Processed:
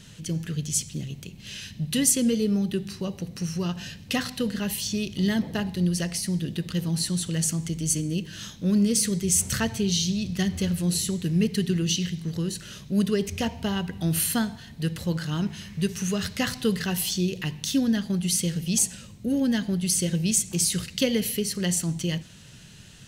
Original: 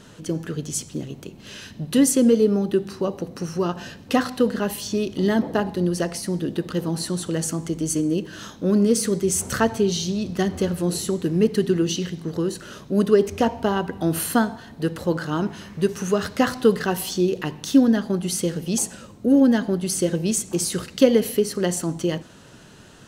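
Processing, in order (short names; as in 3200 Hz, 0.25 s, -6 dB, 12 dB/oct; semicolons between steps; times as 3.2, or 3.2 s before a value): band shelf 610 Hz -12.5 dB 2.9 oct; gain +2 dB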